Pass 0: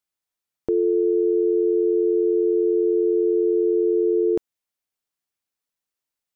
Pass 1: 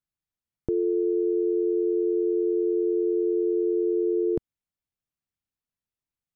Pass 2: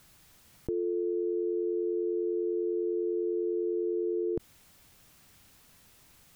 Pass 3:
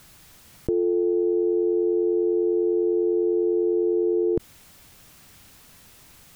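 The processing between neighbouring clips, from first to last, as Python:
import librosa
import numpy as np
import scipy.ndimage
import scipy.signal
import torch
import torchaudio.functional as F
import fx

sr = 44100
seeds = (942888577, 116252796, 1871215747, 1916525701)

y1 = fx.bass_treble(x, sr, bass_db=15, treble_db=-4)
y1 = y1 * librosa.db_to_amplitude(-7.5)
y2 = fx.env_flatten(y1, sr, amount_pct=70)
y2 = y2 * librosa.db_to_amplitude(-6.5)
y3 = fx.doppler_dist(y2, sr, depth_ms=0.11)
y3 = y3 * librosa.db_to_amplitude(8.5)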